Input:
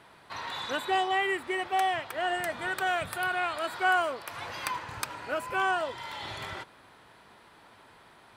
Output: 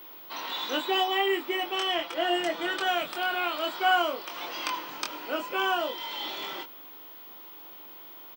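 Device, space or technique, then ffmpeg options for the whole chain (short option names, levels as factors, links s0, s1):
old television with a line whistle: -filter_complex "[0:a]highpass=f=220:w=0.5412,highpass=f=220:w=1.3066,equalizer=f=320:t=q:w=4:g=7,equalizer=f=1700:t=q:w=4:g=-6,equalizer=f=3100:t=q:w=4:g=8,equalizer=f=5500:t=q:w=4:g=5,lowpass=f=7400:w=0.5412,lowpass=f=7400:w=1.3066,aeval=exprs='val(0)+0.00562*sin(2*PI*15625*n/s)':c=same,asettb=1/sr,asplit=3[s0][s1][s2];[s0]atrim=end=1.714[s3];[s1]atrim=start=1.71:end=2.86,asetpts=PTS-STARTPTS,afade=t=in:d=0.004:c=qsin,afade=t=out:st=1.146:d=0.004:c=qsin,aecho=1:1:6:0.59,atrim=end_sample=50715[s4];[s2]atrim=start=2.856[s5];[s3][s4]acrossfade=d=0.004:c1=hsin:c2=qsin[s6];[s6][s5]acrossfade=d=0.004:c1=qsin:c2=hsin,asplit=2[s7][s8];[s8]adelay=23,volume=0.596[s9];[s7][s9]amix=inputs=2:normalize=0"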